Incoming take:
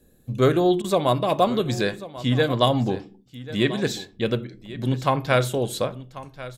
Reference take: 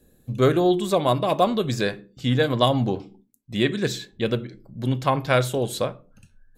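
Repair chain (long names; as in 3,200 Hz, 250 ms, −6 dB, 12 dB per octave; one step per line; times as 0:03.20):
repair the gap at 0:00.82, 21 ms
echo removal 1,090 ms −16.5 dB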